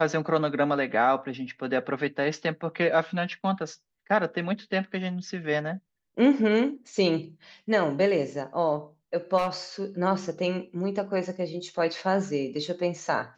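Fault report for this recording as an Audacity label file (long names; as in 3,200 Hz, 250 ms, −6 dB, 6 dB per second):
9.370000	9.480000	clipping −20.5 dBFS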